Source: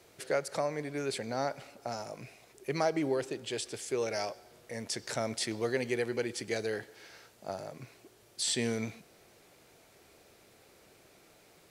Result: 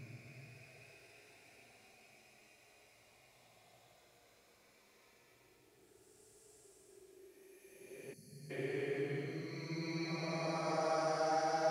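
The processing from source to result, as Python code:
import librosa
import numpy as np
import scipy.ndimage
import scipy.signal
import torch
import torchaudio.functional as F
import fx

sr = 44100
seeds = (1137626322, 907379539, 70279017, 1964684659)

y = fx.paulstretch(x, sr, seeds[0], factor=19.0, window_s=0.1, from_s=2.24)
y = fx.spec_box(y, sr, start_s=8.13, length_s=0.38, low_hz=250.0, high_hz=4100.0, gain_db=-23)
y = y * librosa.db_to_amplitude(-7.5)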